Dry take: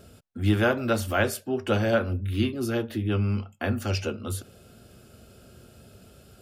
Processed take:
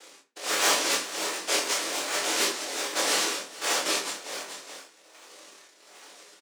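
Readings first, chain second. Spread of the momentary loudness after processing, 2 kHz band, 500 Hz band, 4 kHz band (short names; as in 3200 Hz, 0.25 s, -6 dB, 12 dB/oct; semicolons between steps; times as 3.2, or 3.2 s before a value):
13 LU, +2.0 dB, -6.0 dB, +11.0 dB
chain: noise vocoder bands 1; in parallel at -4 dB: decimation with a swept rate 34×, swing 160% 1.3 Hz; on the sum: soft clip -19 dBFS, distortion -12 dB; HPF 330 Hz 24 dB/oct; doubler 25 ms -5 dB; on a send: echo 0.429 s -12 dB; on the sum: shoebox room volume 34 m³, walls mixed, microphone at 0.39 m; tremolo 1.3 Hz, depth 65%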